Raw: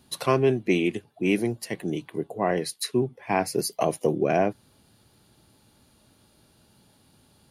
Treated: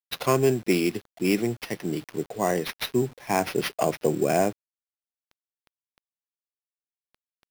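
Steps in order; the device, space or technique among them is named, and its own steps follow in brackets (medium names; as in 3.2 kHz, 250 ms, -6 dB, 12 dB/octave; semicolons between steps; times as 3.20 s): early 8-bit sampler (sample-rate reducer 7.7 kHz, jitter 0%; bit crusher 8-bit)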